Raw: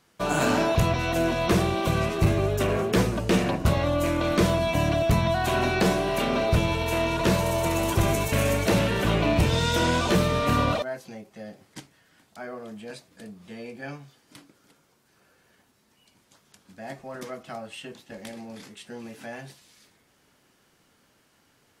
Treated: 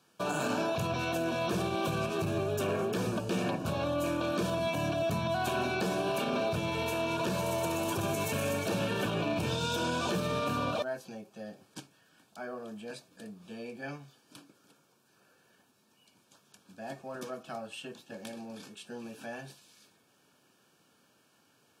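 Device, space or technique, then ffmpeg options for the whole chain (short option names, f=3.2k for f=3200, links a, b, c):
PA system with an anti-feedback notch: -af "highpass=100,asuperstop=centerf=2000:order=20:qfactor=5.5,alimiter=limit=-19.5dB:level=0:latency=1:release=90,highpass=91,volume=-3dB"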